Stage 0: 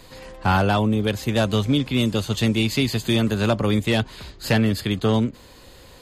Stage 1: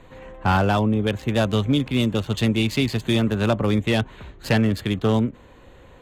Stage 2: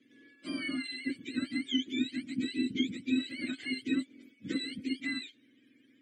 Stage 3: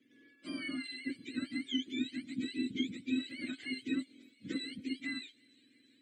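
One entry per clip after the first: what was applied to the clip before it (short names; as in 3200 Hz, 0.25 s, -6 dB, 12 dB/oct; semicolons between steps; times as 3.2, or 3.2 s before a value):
Wiener smoothing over 9 samples
spectrum mirrored in octaves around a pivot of 940 Hz; vowel filter i
thin delay 0.34 s, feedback 74%, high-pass 3900 Hz, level -20.5 dB; gain -4 dB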